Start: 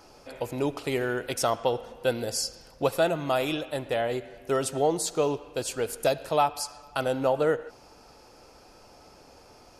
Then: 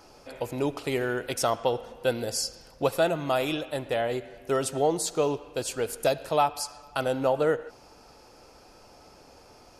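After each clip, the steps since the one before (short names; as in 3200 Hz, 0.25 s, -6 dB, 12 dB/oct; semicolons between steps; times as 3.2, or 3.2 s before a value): nothing audible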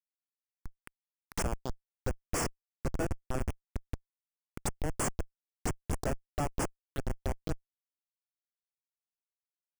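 tilt +3.5 dB/oct; Schmitt trigger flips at -18 dBFS; envelope phaser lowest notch 510 Hz, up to 3900 Hz, full sweep at -29 dBFS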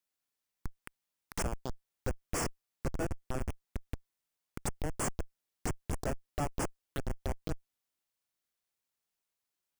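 limiter -31.5 dBFS, peak gain reduction 10 dB; compressor, threshold -39 dBFS, peak gain reduction 6 dB; gain +8 dB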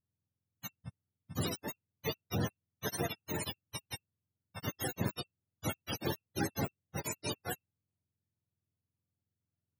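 spectrum mirrored in octaves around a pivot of 480 Hz; gain +2.5 dB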